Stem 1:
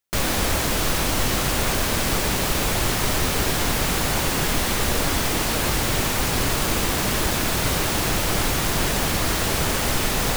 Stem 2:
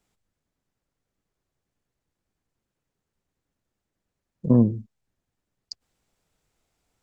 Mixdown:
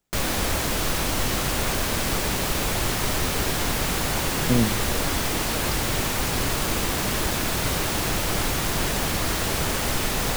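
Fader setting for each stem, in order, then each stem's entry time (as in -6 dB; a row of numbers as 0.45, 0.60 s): -2.5, -3.5 dB; 0.00, 0.00 s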